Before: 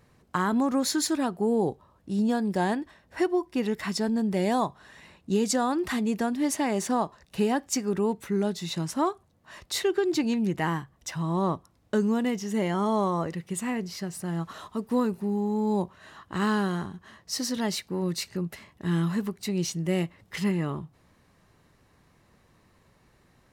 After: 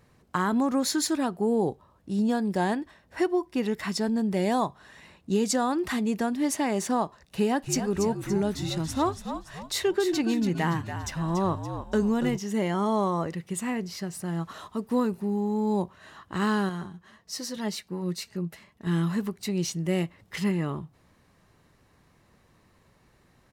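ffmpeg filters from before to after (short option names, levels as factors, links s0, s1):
-filter_complex "[0:a]asplit=3[s0][s1][s2];[s0]afade=t=out:st=7.62:d=0.02[s3];[s1]asplit=6[s4][s5][s6][s7][s8][s9];[s5]adelay=284,afreqshift=-62,volume=0.376[s10];[s6]adelay=568,afreqshift=-124,volume=0.155[s11];[s7]adelay=852,afreqshift=-186,volume=0.0631[s12];[s8]adelay=1136,afreqshift=-248,volume=0.026[s13];[s9]adelay=1420,afreqshift=-310,volume=0.0106[s14];[s4][s10][s11][s12][s13][s14]amix=inputs=6:normalize=0,afade=t=in:st=7.62:d=0.02,afade=t=out:st=12.36:d=0.02[s15];[s2]afade=t=in:st=12.36:d=0.02[s16];[s3][s15][s16]amix=inputs=3:normalize=0,asettb=1/sr,asplit=3[s17][s18][s19];[s17]atrim=end=16.694[s20];[s18]atrim=start=16.69:end=18.87,asetpts=PTS-STARTPTS,afade=t=in:d=0.004:c=qsin,afade=t=out:st=2.176:d=0.004:c=qsin,flanger=delay=4.2:depth=2.1:regen=47:speed=1.9:shape=triangular[s21];[s19]atrim=start=18.866[s22];[s20][s21]acrossfade=d=0.004:c1=hsin:c2=qsin[s23];[s23][s22]acrossfade=d=0.004:c1=qsin:c2=hsin"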